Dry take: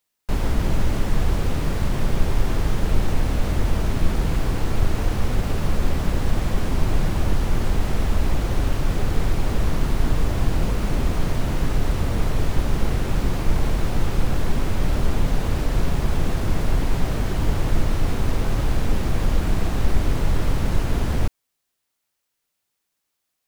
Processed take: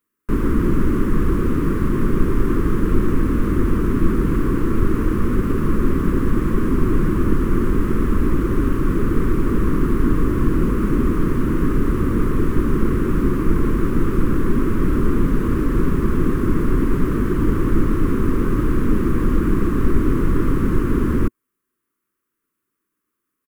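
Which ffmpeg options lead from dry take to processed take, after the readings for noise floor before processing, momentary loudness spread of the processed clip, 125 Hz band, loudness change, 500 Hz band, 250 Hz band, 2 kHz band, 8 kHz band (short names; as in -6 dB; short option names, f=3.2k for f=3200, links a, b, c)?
-78 dBFS, 1 LU, +2.0 dB, +4.5 dB, +6.5 dB, +10.0 dB, +1.5 dB, n/a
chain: -af "firequalizer=gain_entry='entry(110,0);entry(240,10);entry(350,12);entry(720,-20);entry(1100,7);entry(2200,-4);entry(4000,-14);entry(11000,-2)':delay=0.05:min_phase=1,volume=1dB"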